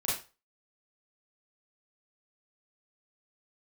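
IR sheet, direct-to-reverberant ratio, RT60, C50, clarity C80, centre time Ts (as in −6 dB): −8.0 dB, 0.30 s, 3.5 dB, 10.0 dB, 47 ms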